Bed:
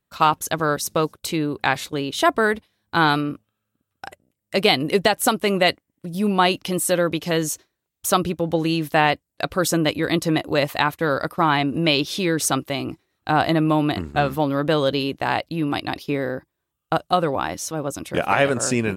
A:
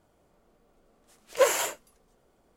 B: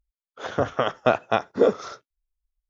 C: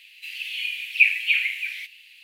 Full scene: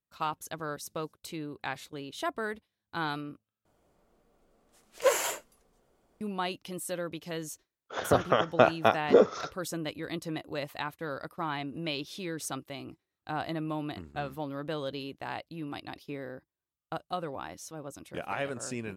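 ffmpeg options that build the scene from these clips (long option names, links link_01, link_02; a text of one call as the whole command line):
ffmpeg -i bed.wav -i cue0.wav -i cue1.wav -filter_complex "[0:a]volume=-15.5dB,asplit=2[link_01][link_02];[link_01]atrim=end=3.654[link_03];[1:a]atrim=end=2.56,asetpts=PTS-STARTPTS,volume=-3dB[link_04];[link_02]atrim=start=6.206[link_05];[2:a]atrim=end=2.69,asetpts=PTS-STARTPTS,volume=-1.5dB,afade=type=in:duration=0.004:curve=hsin,afade=type=out:start_time=2.686:duration=0.004:curve=hsin,adelay=7530[link_06];[link_03][link_04]acrossfade=duration=0.004:curve1=hsin:curve2=hsin[link_07];[link_07][link_05]acrossfade=duration=0.004:curve1=hsin:curve2=hsin[link_08];[link_08][link_06]amix=inputs=2:normalize=0" out.wav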